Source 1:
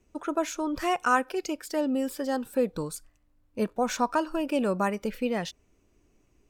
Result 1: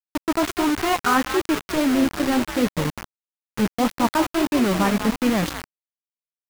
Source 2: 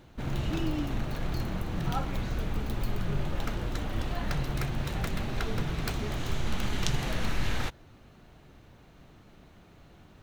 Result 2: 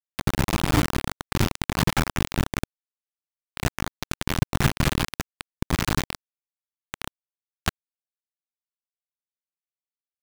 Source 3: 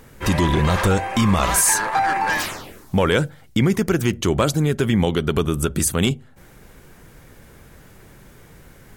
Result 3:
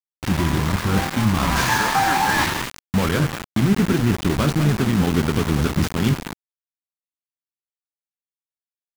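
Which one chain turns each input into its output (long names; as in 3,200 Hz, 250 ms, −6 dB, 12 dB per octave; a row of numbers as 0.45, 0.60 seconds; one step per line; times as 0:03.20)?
running median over 5 samples
downsampling to 16,000 Hz
in parallel at −1 dB: brickwall limiter −14.5 dBFS
on the sum: spectral tilt −3.5 dB per octave
flanger 1.5 Hz, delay 7 ms, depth 9.3 ms, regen +57%
reversed playback
downward compressor 5 to 1, threshold −21 dBFS
reversed playback
high-pass filter 220 Hz 6 dB per octave
echo with shifted repeats 196 ms, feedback 44%, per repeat +58 Hz, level −9 dB
centre clipping without the shift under −29.5 dBFS
parametric band 510 Hz −8.5 dB 1.2 octaves
normalise the peak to −6 dBFS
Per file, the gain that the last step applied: +10.0, +17.5, +10.5 decibels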